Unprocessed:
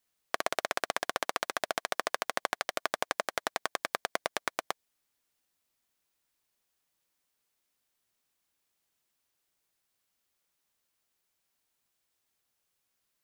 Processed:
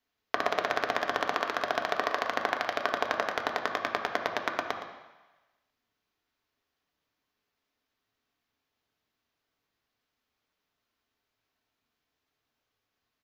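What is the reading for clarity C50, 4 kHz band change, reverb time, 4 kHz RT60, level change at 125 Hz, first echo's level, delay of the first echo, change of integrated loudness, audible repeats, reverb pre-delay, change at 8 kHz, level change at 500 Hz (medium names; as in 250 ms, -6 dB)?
5.5 dB, +0.5 dB, 1.1 s, 1.2 s, +5.0 dB, -12.0 dB, 116 ms, +3.5 dB, 1, 3 ms, -8.5 dB, +4.5 dB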